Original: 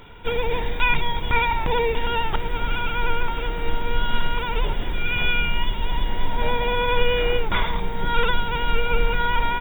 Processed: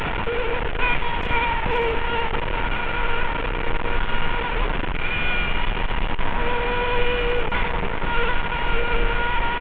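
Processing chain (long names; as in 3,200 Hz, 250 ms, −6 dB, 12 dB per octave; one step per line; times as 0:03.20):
linear delta modulator 16 kbit/s, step −16 dBFS
far-end echo of a speakerphone 390 ms, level −13 dB
level −1.5 dB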